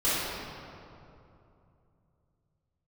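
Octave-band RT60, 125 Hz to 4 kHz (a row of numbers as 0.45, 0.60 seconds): 4.2, 3.2, 2.9, 2.7, 2.0, 1.5 seconds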